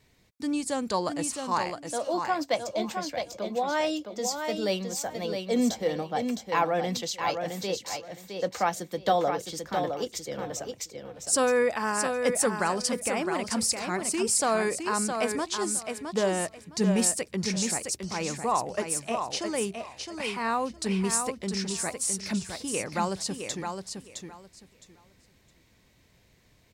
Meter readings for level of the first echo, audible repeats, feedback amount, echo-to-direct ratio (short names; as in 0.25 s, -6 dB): -6.0 dB, 3, 20%, -6.0 dB